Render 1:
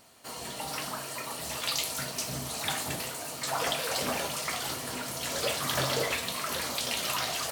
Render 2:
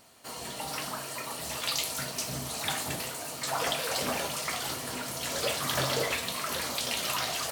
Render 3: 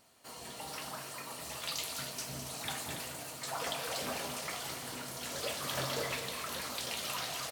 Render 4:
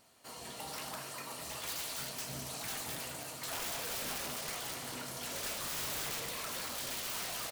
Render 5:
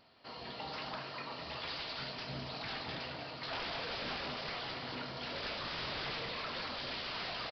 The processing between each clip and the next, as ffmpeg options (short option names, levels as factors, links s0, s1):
-af anull
-af "aecho=1:1:207|282.8:0.355|0.282,volume=0.422"
-af "aeval=exprs='(mod(44.7*val(0)+1,2)-1)/44.7':c=same"
-af "aresample=11025,aresample=44100,volume=1.26"